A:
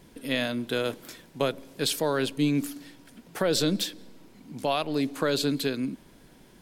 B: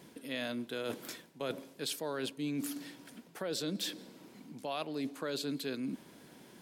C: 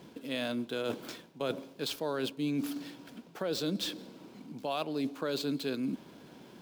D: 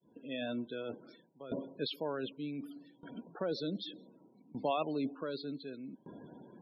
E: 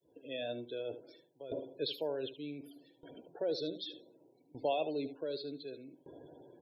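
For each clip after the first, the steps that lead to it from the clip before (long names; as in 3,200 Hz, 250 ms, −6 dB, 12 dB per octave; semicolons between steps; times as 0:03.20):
high-pass filter 150 Hz 12 dB per octave; reversed playback; downward compressor 4 to 1, threshold −36 dBFS, peak gain reduction 13.5 dB; reversed playback
running median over 5 samples; parametric band 1,900 Hz −6 dB 0.42 octaves; level +4 dB
fade in at the beginning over 0.52 s; spectral peaks only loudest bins 32; tremolo with a ramp in dB decaying 0.66 Hz, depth 19 dB; level +4 dB
phaser with its sweep stopped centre 500 Hz, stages 4; single-tap delay 75 ms −13.5 dB; level +2 dB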